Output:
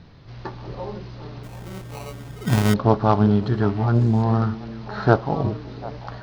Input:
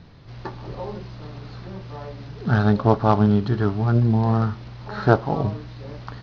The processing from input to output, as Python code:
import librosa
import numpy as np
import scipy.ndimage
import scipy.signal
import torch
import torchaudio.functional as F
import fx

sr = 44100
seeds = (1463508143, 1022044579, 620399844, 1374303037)

y = fx.sample_hold(x, sr, seeds[0], rate_hz=1700.0, jitter_pct=0, at=(1.43, 2.74))
y = fx.echo_stepped(y, sr, ms=372, hz=300.0, octaves=1.4, feedback_pct=70, wet_db=-10.5)